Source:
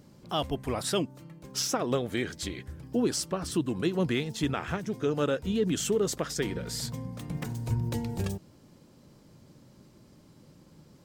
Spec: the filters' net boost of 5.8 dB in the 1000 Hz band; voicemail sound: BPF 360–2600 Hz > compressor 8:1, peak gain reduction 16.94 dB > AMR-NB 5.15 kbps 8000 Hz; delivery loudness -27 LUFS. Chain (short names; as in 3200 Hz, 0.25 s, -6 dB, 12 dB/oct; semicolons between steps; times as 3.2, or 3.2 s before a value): BPF 360–2600 Hz; bell 1000 Hz +8 dB; compressor 8:1, threshold -38 dBFS; gain +18.5 dB; AMR-NB 5.15 kbps 8000 Hz